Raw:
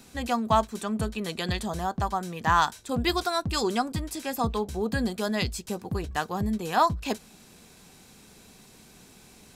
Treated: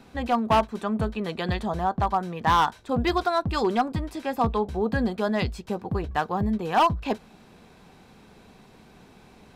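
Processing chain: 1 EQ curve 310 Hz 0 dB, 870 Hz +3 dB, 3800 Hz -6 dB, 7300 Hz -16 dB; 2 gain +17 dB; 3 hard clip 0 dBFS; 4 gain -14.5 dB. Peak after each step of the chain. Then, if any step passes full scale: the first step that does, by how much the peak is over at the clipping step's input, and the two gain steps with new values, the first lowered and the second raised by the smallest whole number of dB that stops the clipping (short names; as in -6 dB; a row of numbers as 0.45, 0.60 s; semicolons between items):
-8.0, +9.0, 0.0, -14.5 dBFS; step 2, 9.0 dB; step 2 +8 dB, step 4 -5.5 dB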